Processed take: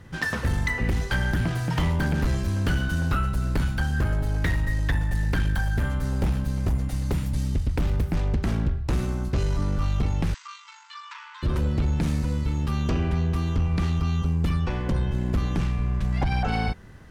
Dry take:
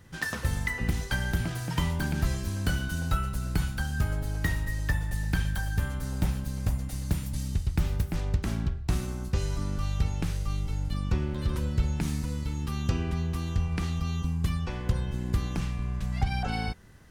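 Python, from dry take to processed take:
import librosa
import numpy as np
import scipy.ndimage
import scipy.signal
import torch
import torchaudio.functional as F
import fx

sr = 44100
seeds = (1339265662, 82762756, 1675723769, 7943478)

y = fx.high_shelf(x, sr, hz=4500.0, db=-10.5)
y = fx.fold_sine(y, sr, drive_db=8, ceiling_db=-13.5)
y = fx.brickwall_bandpass(y, sr, low_hz=870.0, high_hz=8200.0, at=(10.34, 11.43))
y = y * 10.0 ** (-4.5 / 20.0)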